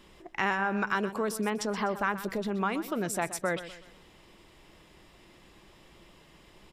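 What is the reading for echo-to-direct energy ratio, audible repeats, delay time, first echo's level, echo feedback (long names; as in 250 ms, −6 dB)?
−13.0 dB, 3, 125 ms, −13.5 dB, 39%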